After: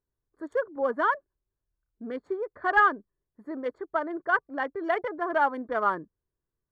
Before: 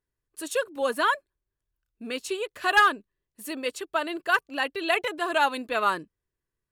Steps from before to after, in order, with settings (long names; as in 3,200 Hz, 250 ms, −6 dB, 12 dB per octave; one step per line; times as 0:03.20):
adaptive Wiener filter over 15 samples
Savitzky-Golay smoothing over 41 samples